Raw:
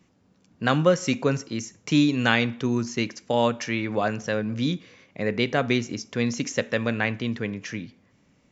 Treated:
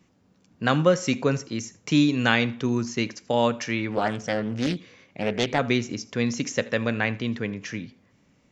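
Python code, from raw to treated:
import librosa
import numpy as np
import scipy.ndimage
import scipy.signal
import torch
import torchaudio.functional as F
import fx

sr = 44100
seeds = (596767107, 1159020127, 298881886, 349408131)

y = x + 10.0 ** (-23.0 / 20.0) * np.pad(x, (int(81 * sr / 1000.0), 0))[:len(x)]
y = fx.doppler_dist(y, sr, depth_ms=0.53, at=(3.9, 5.59))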